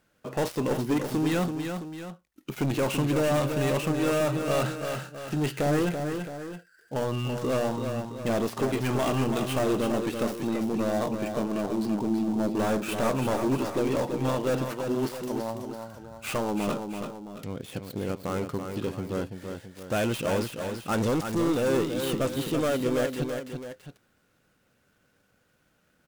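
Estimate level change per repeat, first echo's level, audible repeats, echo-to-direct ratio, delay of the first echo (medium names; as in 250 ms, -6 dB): -6.0 dB, -6.5 dB, 2, -5.5 dB, 333 ms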